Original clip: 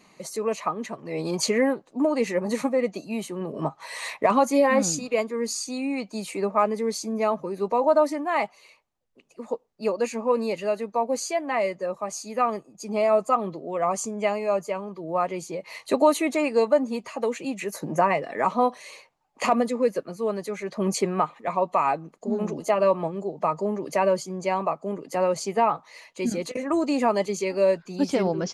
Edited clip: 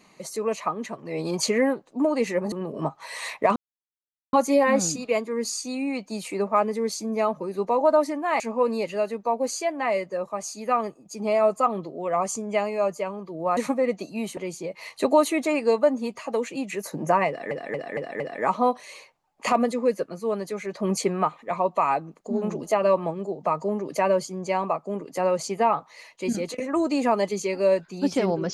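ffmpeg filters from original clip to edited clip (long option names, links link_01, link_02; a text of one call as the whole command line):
ffmpeg -i in.wav -filter_complex "[0:a]asplit=10[link_01][link_02][link_03][link_04][link_05][link_06][link_07][link_08][link_09][link_10];[link_01]atrim=end=2.522[link_11];[link_02]atrim=start=3.318:end=4.36,asetpts=PTS-STARTPTS,afade=type=out:start_time=1.038:duration=0.004:curve=hsin,apad=pad_dur=0.77[link_12];[link_03]atrim=start=4.36:end=8.432,asetpts=PTS-STARTPTS,afade=type=in:duration=0.004:curve=hsin[link_13];[link_04]atrim=start=10.088:end=15.262[link_14];[link_05]atrim=start=2.518:end=3.322[link_15];[link_06]atrim=start=15.258:end=18.402[link_16];[link_07]atrim=start=18.168:end=18.402[link_17];[link_08]atrim=start=18.168:end=18.402[link_18];[link_09]atrim=start=18.168:end=18.402[link_19];[link_10]atrim=start=18.168[link_20];[link_12][link_13]concat=n=2:v=0:a=1[link_21];[link_11][link_21]acrossfade=duration=0.004:curve1=hsin:curve2=hsin[link_22];[link_22][link_14]acrossfade=duration=0.004:curve1=hsin:curve2=hsin[link_23];[link_23][link_15]acrossfade=duration=0.004:curve1=hsin:curve2=hsin[link_24];[link_24][link_16]acrossfade=duration=0.004:curve1=hsin:curve2=hsin[link_25];[link_25][link_17]acrossfade=duration=0.004:curve1=hsin:curve2=hsin[link_26];[link_26][link_18]acrossfade=duration=0.004:curve1=hsin:curve2=hsin[link_27];[link_27][link_19]acrossfade=duration=0.004:curve1=hsin:curve2=hsin[link_28];[link_28][link_20]acrossfade=duration=0.004:curve1=hsin:curve2=hsin" out.wav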